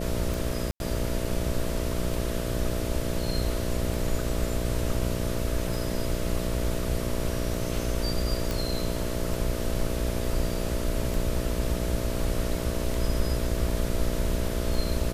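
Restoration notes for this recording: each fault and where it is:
buzz 60 Hz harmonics 11 -32 dBFS
tick 33 1/3 rpm
0.71–0.8 gap 91 ms
8.51 pop

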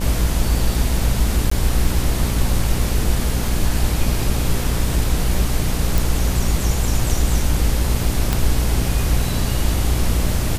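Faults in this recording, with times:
buzz 60 Hz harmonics 15 -22 dBFS
1.5–1.51 gap 14 ms
5.98 pop
8.33 pop

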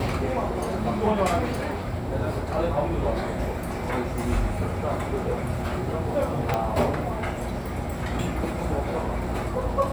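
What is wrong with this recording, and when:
6.54 pop -11 dBFS

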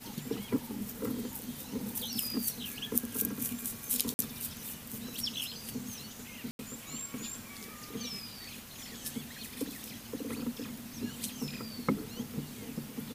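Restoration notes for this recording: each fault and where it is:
4.14–4.19 gap 50 ms
6.51–6.59 gap 81 ms

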